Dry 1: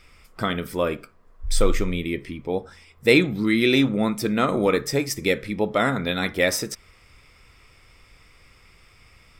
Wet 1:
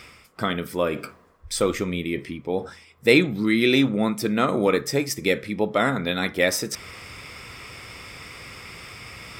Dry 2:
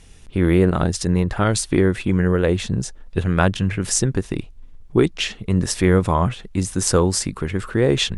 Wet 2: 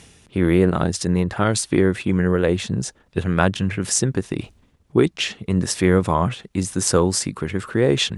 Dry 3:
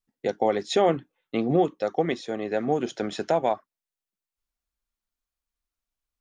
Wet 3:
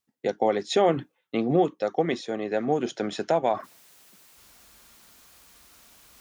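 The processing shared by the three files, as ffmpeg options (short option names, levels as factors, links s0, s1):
-af "highpass=100,areverse,acompressor=mode=upward:threshold=0.0501:ratio=2.5,areverse"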